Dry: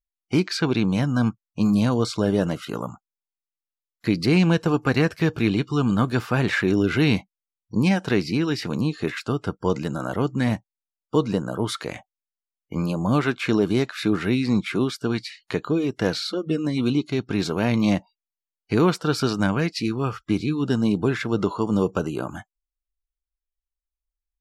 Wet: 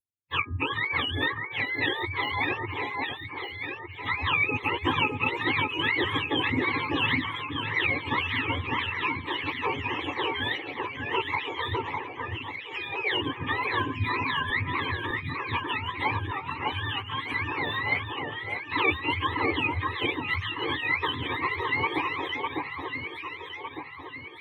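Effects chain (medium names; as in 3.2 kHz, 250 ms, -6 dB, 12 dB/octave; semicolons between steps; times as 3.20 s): spectrum inverted on a logarithmic axis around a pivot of 650 Hz; 13.63–14.50 s: rippled EQ curve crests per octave 1.5, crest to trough 15 dB; harmonic-percussive split harmonic -13 dB; static phaser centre 970 Hz, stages 8; de-hum 205.7 Hz, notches 9; on a send: echo whose repeats swap between lows and highs 603 ms, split 1.9 kHz, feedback 68%, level -2 dB; on the sum: trim +3 dB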